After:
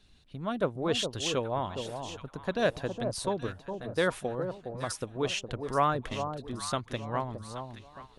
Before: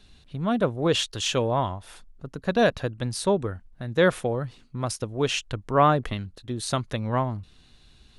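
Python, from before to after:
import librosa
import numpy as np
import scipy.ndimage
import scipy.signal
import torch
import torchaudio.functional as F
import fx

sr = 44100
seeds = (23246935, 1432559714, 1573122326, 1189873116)

y = fx.hpss(x, sr, part='harmonic', gain_db=-6)
y = fx.echo_alternate(y, sr, ms=413, hz=1000.0, feedback_pct=53, wet_db=-6.5)
y = y * librosa.db_to_amplitude(-4.5)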